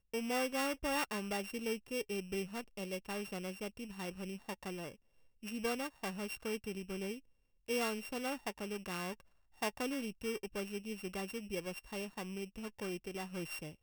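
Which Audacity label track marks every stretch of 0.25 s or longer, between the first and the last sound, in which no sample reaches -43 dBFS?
4.920000	5.440000	silence
7.170000	7.690000	silence
9.130000	9.620000	silence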